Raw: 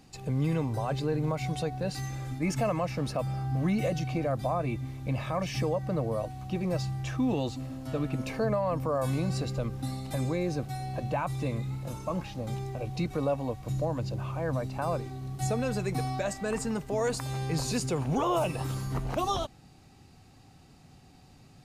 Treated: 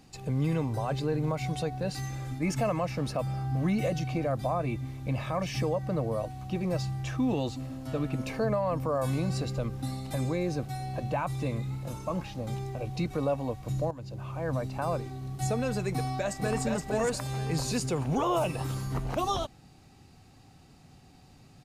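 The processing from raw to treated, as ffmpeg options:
ffmpeg -i in.wav -filter_complex "[0:a]asplit=2[link_01][link_02];[link_02]afade=type=in:start_time=15.92:duration=0.01,afade=type=out:start_time=16.62:duration=0.01,aecho=0:1:470|940|1410|1880:0.707946|0.176986|0.0442466|0.0110617[link_03];[link_01][link_03]amix=inputs=2:normalize=0,asplit=2[link_04][link_05];[link_04]atrim=end=13.91,asetpts=PTS-STARTPTS,afade=type=out:start_time=13.906:duration=0.004:curve=hsin:silence=0.223872[link_06];[link_05]atrim=start=13.91,asetpts=PTS-STARTPTS,afade=type=in:duration=0.63:silence=0.223872[link_07];[link_06][link_07]concat=n=2:v=0:a=1" out.wav

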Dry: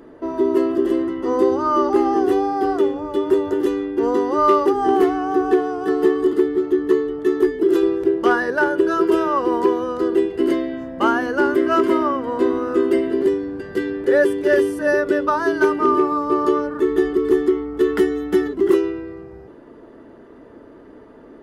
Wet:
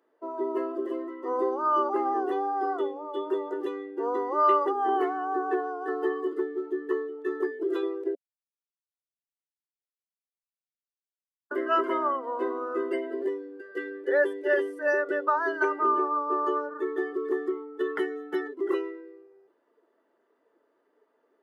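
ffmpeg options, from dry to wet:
ffmpeg -i in.wav -filter_complex "[0:a]asplit=3[link_01][link_02][link_03];[link_01]atrim=end=8.15,asetpts=PTS-STARTPTS,afade=type=out:start_time=8.146:duration=0.004:curve=hsin[link_04];[link_02]atrim=start=8.15:end=11.51,asetpts=PTS-STARTPTS,volume=0[link_05];[link_03]atrim=start=11.51,asetpts=PTS-STARTPTS,afade=type=in:duration=0.004:curve=hsin[link_06];[link_04][link_05][link_06]concat=n=3:v=0:a=1,highpass=560,afftdn=noise_reduction=17:noise_floor=-32,volume=-4.5dB" out.wav

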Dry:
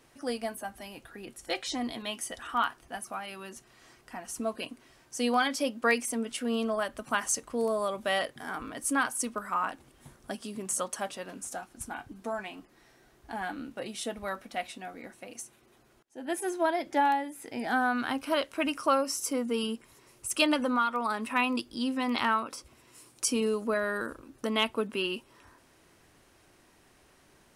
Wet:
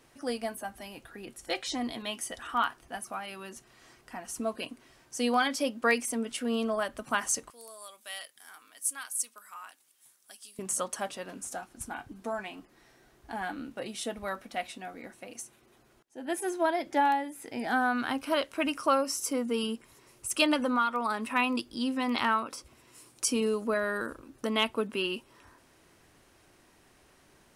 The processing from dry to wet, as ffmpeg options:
ffmpeg -i in.wav -filter_complex "[0:a]asettb=1/sr,asplit=3[link_01][link_02][link_03];[link_01]atrim=end=7.504[link_04];[link_02]atrim=start=7.5:end=10.59,asetpts=PTS-STARTPTS,afade=type=in:duration=0.004:curve=qsin,afade=type=out:start_time=3.086:duration=0.004:curve=qsin,aderivative[link_05];[link_03]atrim=start=10.586[link_06];[link_04][link_05]acrossfade=duration=0.004:curve1=hsin:curve2=qsin[link_07];[link_07][link_06]acrossfade=duration=0.004:curve1=qsin:curve2=hsin" out.wav

